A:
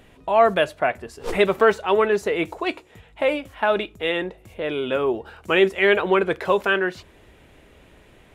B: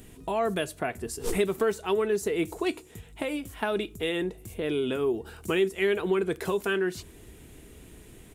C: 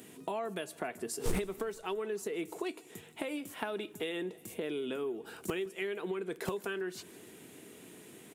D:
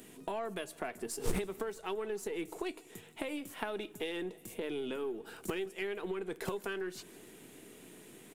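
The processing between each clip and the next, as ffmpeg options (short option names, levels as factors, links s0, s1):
-af "firequalizer=gain_entry='entry(530,0);entry(800,-9);entry(2400,-7);entry(8400,9)':delay=0.05:min_phase=1,acompressor=threshold=0.0398:ratio=2.5,equalizer=f=560:w=5.6:g=-15,volume=1.5"
-filter_complex "[0:a]acrossover=split=150[s0][s1];[s0]acrusher=bits=5:mix=0:aa=0.000001[s2];[s1]acompressor=threshold=0.02:ratio=6[s3];[s2][s3]amix=inputs=2:normalize=0,aecho=1:1:159|318|477|636:0.0668|0.0388|0.0225|0.013"
-af "aeval=exprs='if(lt(val(0),0),0.708*val(0),val(0))':c=same"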